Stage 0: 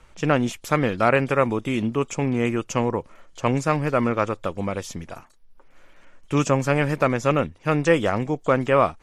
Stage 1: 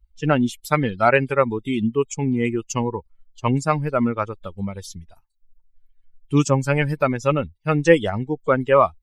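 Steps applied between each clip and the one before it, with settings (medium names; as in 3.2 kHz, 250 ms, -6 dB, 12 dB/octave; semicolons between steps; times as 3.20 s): expander on every frequency bin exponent 2; trim +6 dB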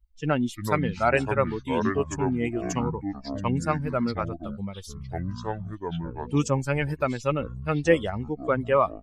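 ever faster or slower copies 259 ms, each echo -6 st, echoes 2, each echo -6 dB; trim -6 dB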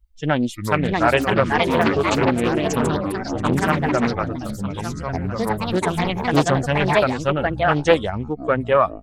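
ever faster or slower copies 702 ms, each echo +4 st, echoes 2; loudspeaker Doppler distortion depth 0.46 ms; trim +5 dB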